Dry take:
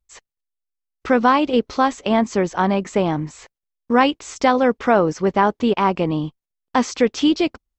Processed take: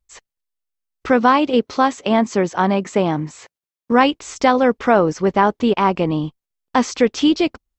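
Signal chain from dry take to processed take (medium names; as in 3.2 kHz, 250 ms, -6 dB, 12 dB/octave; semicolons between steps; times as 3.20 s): 1.10–3.92 s: high-pass 99 Hz 12 dB/octave; trim +1.5 dB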